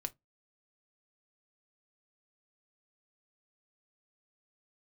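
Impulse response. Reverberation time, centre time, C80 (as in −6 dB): 0.15 s, 3 ms, 40.0 dB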